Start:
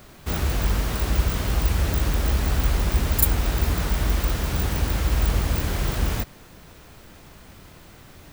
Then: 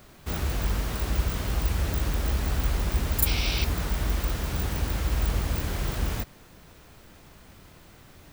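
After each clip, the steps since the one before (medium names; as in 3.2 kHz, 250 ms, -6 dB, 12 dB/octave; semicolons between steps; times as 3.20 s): time-frequency box 3.27–3.64 s, 2.1–6 kHz +12 dB; trim -4.5 dB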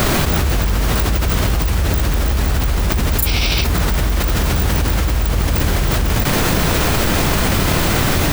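level flattener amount 100%; trim +4 dB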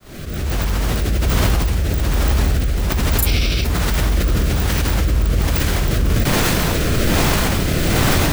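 fade-in on the opening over 0.89 s; rotary cabinet horn 1.2 Hz; trim +1 dB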